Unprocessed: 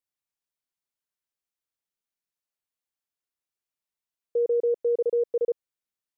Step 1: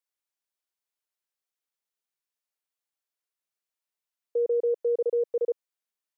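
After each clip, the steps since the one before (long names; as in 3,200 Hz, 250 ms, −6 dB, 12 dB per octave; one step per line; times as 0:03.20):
high-pass filter 370 Hz 12 dB per octave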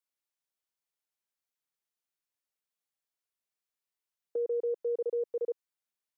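dynamic equaliser 580 Hz, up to −5 dB, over −39 dBFS, Q 1.5
level −2.5 dB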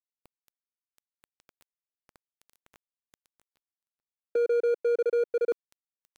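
running median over 41 samples
reversed playback
upward compression, threshold −35 dBFS
reversed playback
level +7.5 dB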